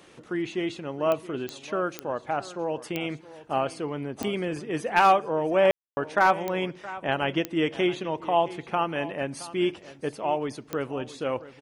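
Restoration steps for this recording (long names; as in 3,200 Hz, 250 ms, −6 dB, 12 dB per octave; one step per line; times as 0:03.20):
clipped peaks rebuilt −10 dBFS
click removal
ambience match 0:05.71–0:05.97
echo removal 670 ms −17 dB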